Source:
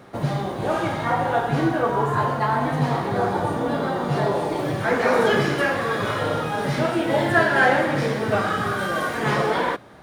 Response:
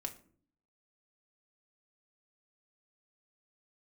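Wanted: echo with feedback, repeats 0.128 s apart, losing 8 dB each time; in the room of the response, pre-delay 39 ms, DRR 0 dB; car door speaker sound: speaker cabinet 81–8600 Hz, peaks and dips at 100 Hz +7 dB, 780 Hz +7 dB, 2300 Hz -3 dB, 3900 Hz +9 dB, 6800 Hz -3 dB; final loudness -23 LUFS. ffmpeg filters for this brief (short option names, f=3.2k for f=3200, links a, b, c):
-filter_complex "[0:a]aecho=1:1:128|256|384|512|640:0.398|0.159|0.0637|0.0255|0.0102,asplit=2[a][b];[1:a]atrim=start_sample=2205,adelay=39[c];[b][c]afir=irnorm=-1:irlink=0,volume=1.5dB[d];[a][d]amix=inputs=2:normalize=0,highpass=81,equalizer=f=100:t=q:w=4:g=7,equalizer=f=780:t=q:w=4:g=7,equalizer=f=2.3k:t=q:w=4:g=-3,equalizer=f=3.9k:t=q:w=4:g=9,equalizer=f=6.8k:t=q:w=4:g=-3,lowpass=f=8.6k:w=0.5412,lowpass=f=8.6k:w=1.3066,volume=-6.5dB"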